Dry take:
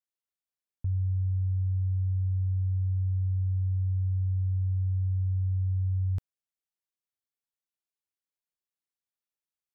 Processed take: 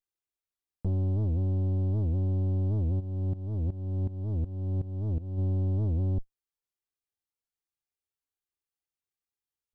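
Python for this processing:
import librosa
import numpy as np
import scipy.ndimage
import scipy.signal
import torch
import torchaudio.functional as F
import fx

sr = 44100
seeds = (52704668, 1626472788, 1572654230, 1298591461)

y = fx.lower_of_two(x, sr, delay_ms=2.5)
y = fx.low_shelf(y, sr, hz=230.0, db=8.0)
y = fx.leveller(y, sr, passes=1)
y = fx.rider(y, sr, range_db=10, speed_s=0.5)
y = 10.0 ** (-25.0 / 20.0) * np.tanh(y / 10.0 ** (-25.0 / 20.0))
y = fx.tremolo_shape(y, sr, shape='saw_up', hz=2.7, depth_pct=85, at=(2.99, 5.37), fade=0.02)
y = fx.record_warp(y, sr, rpm=78.0, depth_cents=250.0)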